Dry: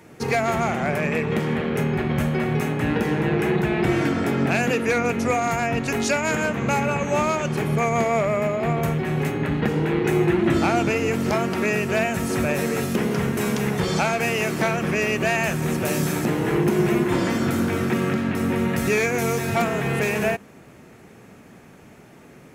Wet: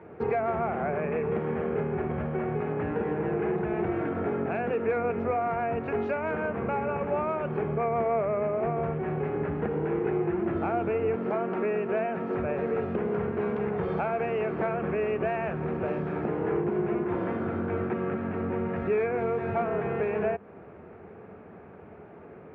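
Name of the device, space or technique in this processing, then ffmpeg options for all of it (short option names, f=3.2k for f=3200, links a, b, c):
bass amplifier: -filter_complex "[0:a]acompressor=threshold=-28dB:ratio=3,highpass=69,equalizer=f=83:t=q:w=4:g=6,equalizer=f=130:t=q:w=4:g=-8,equalizer=f=260:t=q:w=4:g=-6,equalizer=f=430:t=q:w=4:g=6,equalizer=f=710:t=q:w=4:g=3,equalizer=f=1.9k:t=q:w=4:g=-6,lowpass=f=2k:w=0.5412,lowpass=f=2k:w=1.3066,asettb=1/sr,asplit=3[a][b][c];[a]atrim=end=11.164[d];[b]atrim=start=11.16:end=12.35,asetpts=PTS-STARTPTS,afade=t=in:d=0.004:c=qsin,afade=t=out:st=1.186:d=0.004:c=qsin,highpass=f=150:w=0.5412,highpass=f=150:w=1.3066[e];[c]atrim=start=12.346[f];[d][e]acrossfade=d=0.004:c1=hsin:c2=qsin[g];[g][f]acrossfade=d=0.004:c1=qsin:c2=hsin"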